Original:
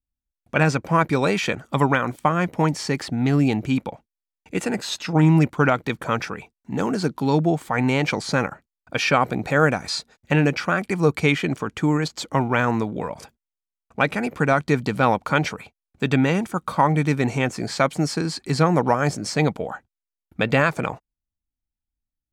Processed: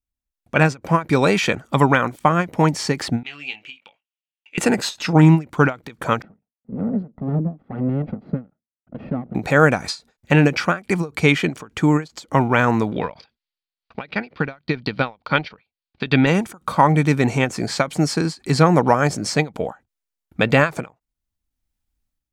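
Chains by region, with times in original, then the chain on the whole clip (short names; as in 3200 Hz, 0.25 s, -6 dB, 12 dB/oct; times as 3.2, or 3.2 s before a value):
3.23–4.58 band-pass 2800 Hz, Q 5.1 + doubler 20 ms -6 dB
6.22–9.35 minimum comb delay 1.5 ms + band-pass 230 Hz, Q 2.6 + air absorption 390 m
12.91–16.27 EQ curve 1100 Hz 0 dB, 4600 Hz +8 dB, 7700 Hz -29 dB + transient shaper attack -1 dB, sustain -12 dB + mismatched tape noise reduction encoder only
whole clip: AGC; ending taper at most 270 dB/s; gain -1 dB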